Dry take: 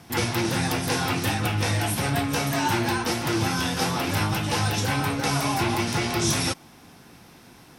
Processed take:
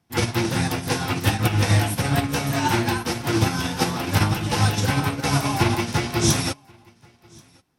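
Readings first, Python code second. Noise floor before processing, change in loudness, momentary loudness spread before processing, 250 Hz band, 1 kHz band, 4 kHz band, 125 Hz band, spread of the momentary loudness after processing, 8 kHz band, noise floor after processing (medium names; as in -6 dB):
-50 dBFS, +2.5 dB, 2 LU, +2.5 dB, +1.0 dB, +1.0 dB, +5.0 dB, 4 LU, +1.0 dB, -58 dBFS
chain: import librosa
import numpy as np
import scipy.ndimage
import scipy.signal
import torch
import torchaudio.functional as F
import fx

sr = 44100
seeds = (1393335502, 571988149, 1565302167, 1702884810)

y = fx.low_shelf(x, sr, hz=220.0, db=4.0)
y = y + 10.0 ** (-11.5 / 20.0) * np.pad(y, (int(1082 * sr / 1000.0), 0))[:len(y)]
y = fx.upward_expand(y, sr, threshold_db=-38.0, expansion=2.5)
y = F.gain(torch.from_numpy(y), 5.5).numpy()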